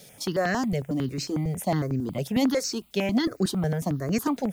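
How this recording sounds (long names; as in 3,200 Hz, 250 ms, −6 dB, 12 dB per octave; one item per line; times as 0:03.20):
a quantiser's noise floor 10 bits, dither triangular
notches that jump at a steady rate 11 Hz 300–3,300 Hz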